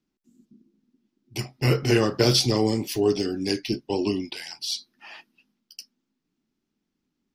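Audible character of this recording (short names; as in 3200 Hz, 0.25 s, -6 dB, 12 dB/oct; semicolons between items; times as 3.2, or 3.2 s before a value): noise floor -81 dBFS; spectral tilt -5.0 dB/oct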